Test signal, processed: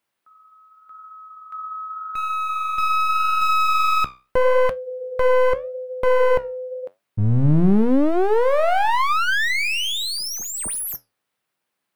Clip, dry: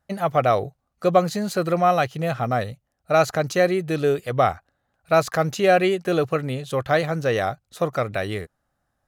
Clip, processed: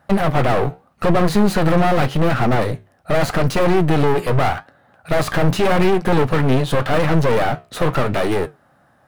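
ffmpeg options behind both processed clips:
-filter_complex "[0:a]asplit=2[a][b];[b]highpass=f=720:p=1,volume=33dB,asoftclip=type=tanh:threshold=-3.5dB[c];[a][c]amix=inputs=2:normalize=0,lowpass=f=2.1k:p=1,volume=-6dB,equalizer=f=140:t=o:w=2.3:g=10,aeval=exprs='clip(val(0),-1,0.0708)':c=same,flanger=delay=8.5:depth=7.2:regen=-72:speed=0.84:shape=sinusoidal,aexciter=amount=2.8:drive=3.9:freq=8.8k,highshelf=f=5.7k:g=-6.5"

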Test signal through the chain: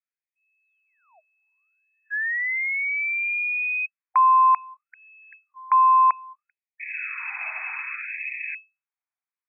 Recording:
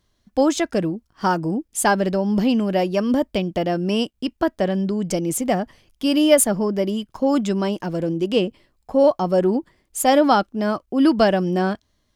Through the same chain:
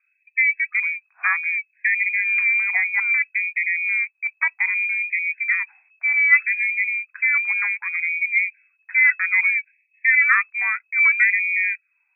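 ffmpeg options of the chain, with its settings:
-af "aeval=exprs='0.75*(cos(1*acos(clip(val(0)/0.75,-1,1)))-cos(1*PI/2))+0.106*(cos(2*acos(clip(val(0)/0.75,-1,1)))-cos(2*PI/2))+0.0266*(cos(3*acos(clip(val(0)/0.75,-1,1)))-cos(3*PI/2))+0.00841*(cos(8*acos(clip(val(0)/0.75,-1,1)))-cos(8*PI/2))':c=same,lowpass=f=2.2k:t=q:w=0.5098,lowpass=f=2.2k:t=q:w=0.6013,lowpass=f=2.2k:t=q:w=0.9,lowpass=f=2.2k:t=q:w=2.563,afreqshift=-2600,afftfilt=real='re*gte(b*sr/1024,630*pow(1800/630,0.5+0.5*sin(2*PI*0.63*pts/sr)))':imag='im*gte(b*sr/1024,630*pow(1800/630,0.5+0.5*sin(2*PI*0.63*pts/sr)))':win_size=1024:overlap=0.75"

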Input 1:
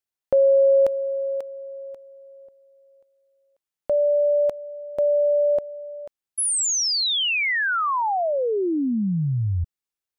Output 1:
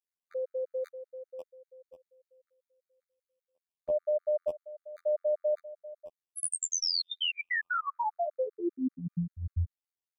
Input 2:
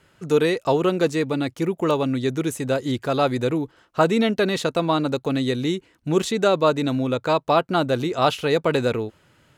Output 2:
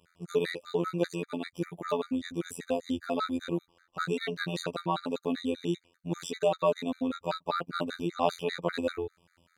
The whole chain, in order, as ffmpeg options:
-af "afftfilt=real='hypot(re,im)*cos(PI*b)':imag='0':win_size=2048:overlap=0.75,afftfilt=real='re*gt(sin(2*PI*5.1*pts/sr)*(1-2*mod(floor(b*sr/1024/1200),2)),0)':imag='im*gt(sin(2*PI*5.1*pts/sr)*(1-2*mod(floor(b*sr/1024/1200),2)),0)':win_size=1024:overlap=0.75,volume=-3.5dB"

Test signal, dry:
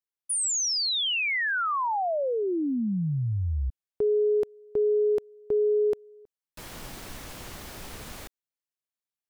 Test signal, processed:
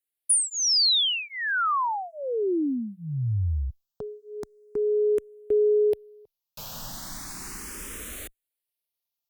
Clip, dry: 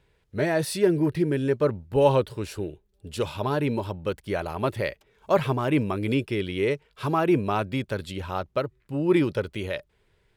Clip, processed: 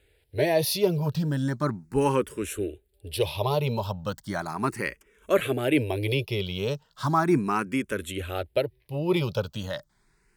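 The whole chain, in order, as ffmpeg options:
-filter_complex "[0:a]aemphasis=mode=production:type=cd,asplit=2[a][b];[b]afreqshift=0.36[c];[a][c]amix=inputs=2:normalize=1,volume=3dB"

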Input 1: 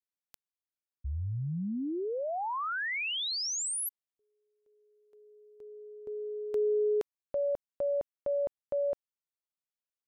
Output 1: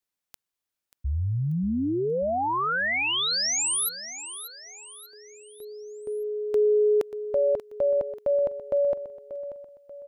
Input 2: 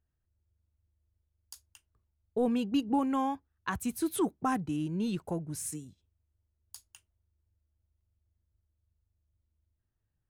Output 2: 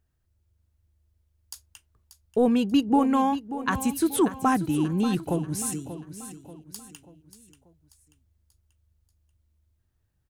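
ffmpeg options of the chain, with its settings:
-af "aecho=1:1:586|1172|1758|2344:0.237|0.104|0.0459|0.0202,volume=7.5dB"

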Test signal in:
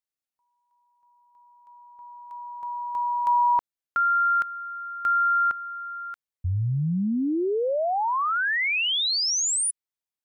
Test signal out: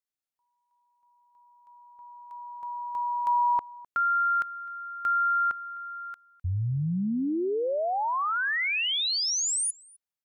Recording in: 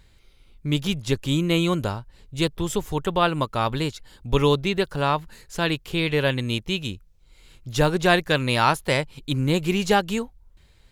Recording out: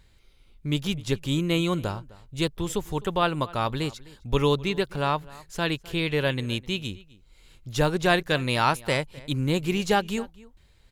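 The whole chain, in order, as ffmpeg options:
-filter_complex "[0:a]asplit=2[a][b];[b]adelay=256.6,volume=-21dB,highshelf=f=4k:g=-5.77[c];[a][c]amix=inputs=2:normalize=0,volume=-3dB"

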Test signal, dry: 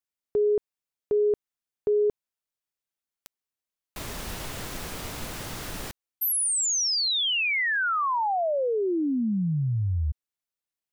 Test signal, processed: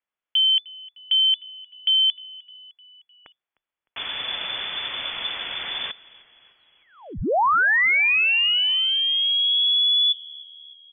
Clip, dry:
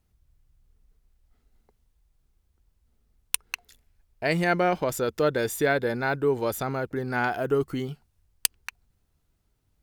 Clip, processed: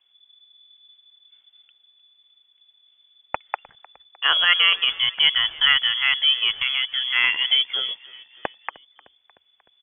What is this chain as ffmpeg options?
-filter_complex "[0:a]equalizer=f=310:t=o:w=2.2:g=-4,lowpass=f=3k:t=q:w=0.5098,lowpass=f=3k:t=q:w=0.6013,lowpass=f=3k:t=q:w=0.9,lowpass=f=3k:t=q:w=2.563,afreqshift=-3500,asplit=5[a][b][c][d][e];[b]adelay=305,afreqshift=-31,volume=-22dB[f];[c]adelay=610,afreqshift=-62,volume=-26.9dB[g];[d]adelay=915,afreqshift=-93,volume=-31.8dB[h];[e]adelay=1220,afreqshift=-124,volume=-36.6dB[i];[a][f][g][h][i]amix=inputs=5:normalize=0,volume=7.5dB"

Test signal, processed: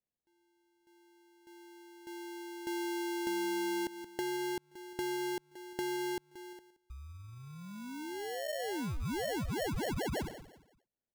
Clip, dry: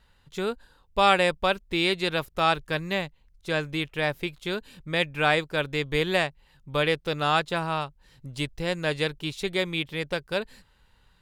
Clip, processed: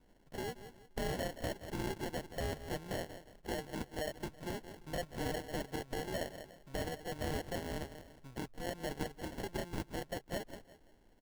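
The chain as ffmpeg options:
-af "aresample=16000,asoftclip=type=tanh:threshold=-19.5dB,aresample=44100,aecho=1:1:175|350|525:0.141|0.0438|0.0136,acompressor=threshold=-32dB:ratio=6,equalizer=f=110:t=o:w=3:g=-14,acrusher=samples=36:mix=1:aa=0.000001,volume=-1dB"

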